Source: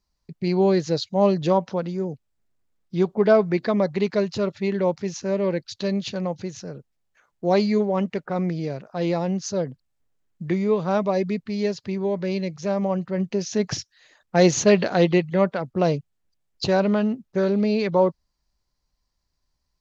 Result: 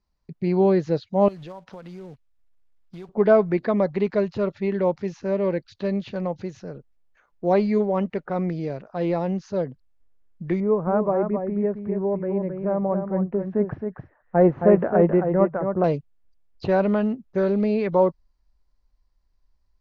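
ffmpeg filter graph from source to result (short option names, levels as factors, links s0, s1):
-filter_complex "[0:a]asettb=1/sr,asplit=3[s0][s1][s2];[s0]atrim=end=1.284[s3];[s1]atrim=start=1.28:end=3.09,asetpts=PTS-STARTPTS,afade=t=in:d=0.004:c=qsin,afade=t=out:st=1.806:d=0.004:c=qsin,equalizer=f=280:w=0.34:g=-9,acompressor=threshold=0.02:ratio=10:attack=3.2:release=140:knee=1:detection=peak,acrusher=bits=4:mode=log:mix=0:aa=0.000001[s4];[s2]atrim=start=3.086[s5];[s3][s4]acrossfade=d=0.004:c1=hsin:c2=qsin[s6];[s6][s5]acrossfade=d=0.004:c1=qsin:c2=hsin,asettb=1/sr,asplit=3[s7][s8][s9];[s7]atrim=end=10.604[s10];[s8]atrim=start=10.6:end=15.84,asetpts=PTS-STARTPTS,afade=t=in:d=0.004:c=qsin,afade=t=out:st=5.236:d=0.004:c=qsin,lowpass=f=1500:w=0.5412,lowpass=f=1500:w=1.3066,aecho=1:1:268:0.473,atrim=end_sample=231084[s11];[s9]atrim=start=15.836[s12];[s10][s11]acrossfade=d=0.004:c1=hsin:c2=qsin[s13];[s13][s12]acrossfade=d=0.004:c1=qsin:c2=hsin,aemphasis=mode=reproduction:type=75fm,acrossover=split=3000[s14][s15];[s15]acompressor=threshold=0.00282:ratio=4:attack=1:release=60[s16];[s14][s16]amix=inputs=2:normalize=0,asubboost=boost=4:cutoff=51"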